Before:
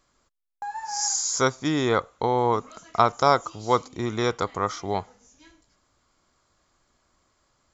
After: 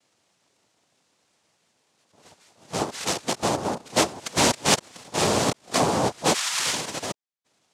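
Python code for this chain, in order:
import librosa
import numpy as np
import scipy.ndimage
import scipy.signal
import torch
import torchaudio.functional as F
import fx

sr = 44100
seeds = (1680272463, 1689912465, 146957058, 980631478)

y = x[::-1].copy()
y = fx.noise_vocoder(y, sr, seeds[0], bands=2)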